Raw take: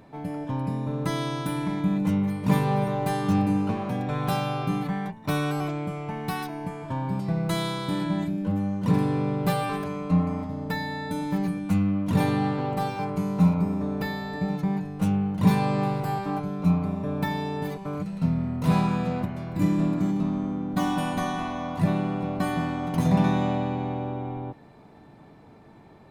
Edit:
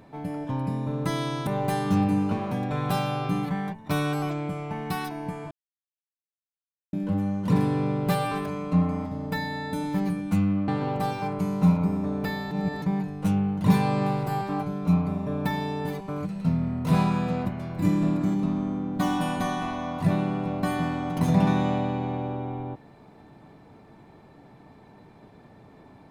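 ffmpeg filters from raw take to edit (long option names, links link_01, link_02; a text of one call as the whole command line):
ffmpeg -i in.wav -filter_complex "[0:a]asplit=7[link_01][link_02][link_03][link_04][link_05][link_06][link_07];[link_01]atrim=end=1.472[link_08];[link_02]atrim=start=2.848:end=6.89,asetpts=PTS-STARTPTS,afade=type=out:start_time=4.038:duration=0.004:curve=hsin[link_09];[link_03]atrim=start=6.89:end=8.31,asetpts=PTS-STARTPTS,volume=0[link_10];[link_04]atrim=start=8.31:end=12.062,asetpts=PTS-STARTPTS,afade=type=in:duration=0.004:curve=hsin[link_11];[link_05]atrim=start=12.448:end=14.282[link_12];[link_06]atrim=start=14.278:end=14.592,asetpts=PTS-STARTPTS,areverse[link_13];[link_07]atrim=start=14.588[link_14];[link_09][link_10][link_11]concat=n=3:v=0:a=1[link_15];[link_08][link_15]acrossfade=duration=0.004:curve1=hsin:curve2=hsin[link_16];[link_16][link_12]acrossfade=duration=0.004:curve1=hsin:curve2=hsin[link_17];[link_17][link_13]acrossfade=duration=0.004:curve1=hsin:curve2=hsin[link_18];[link_18][link_14]acrossfade=duration=0.004:curve1=hsin:curve2=hsin" out.wav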